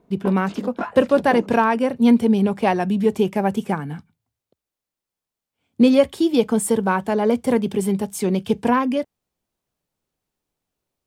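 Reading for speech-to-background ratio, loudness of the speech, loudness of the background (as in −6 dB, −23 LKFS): 13.0 dB, −19.5 LKFS, −32.5 LKFS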